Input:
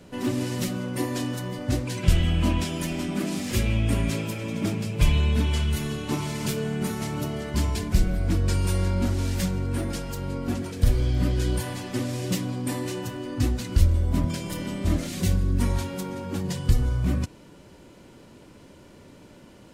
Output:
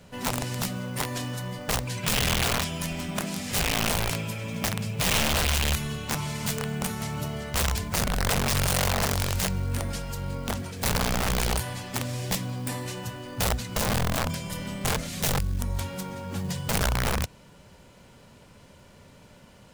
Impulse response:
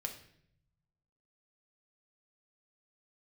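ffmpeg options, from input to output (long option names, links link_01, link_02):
-filter_complex "[0:a]acrusher=bits=7:mode=log:mix=0:aa=0.000001,asettb=1/sr,asplit=3[link_01][link_02][link_03];[link_01]atrim=end=15.384[link_04];[link_02]atrim=start=15.38:end=15.79,asetpts=PTS-STARTPTS,afade=type=in:duration=0.004:curve=qsin,afade=type=out:start_time=0.406:duration=0.004:curve=qsin,acrossover=split=1100|4200[link_05][link_06][link_07];[link_05]acompressor=threshold=-24dB:ratio=4[link_08];[link_06]acompressor=threshold=-54dB:ratio=4[link_09];[link_07]acompressor=threshold=-50dB:ratio=4[link_10];[link_08][link_09][link_10]amix=inputs=3:normalize=0[link_11];[link_03]atrim=start=15.786[link_12];[link_04][link_11]acrossfade=duration=0.004:curve1=hsin:curve2=qsin[link_13];[link_13][link_12]acrossfade=duration=0.004:curve1=qsin:curve2=hsin,aeval=exprs='(mod(8.41*val(0)+1,2)-1)/8.41':channel_layout=same,equalizer=frequency=320:width_type=o:width=0.69:gain=-12.5"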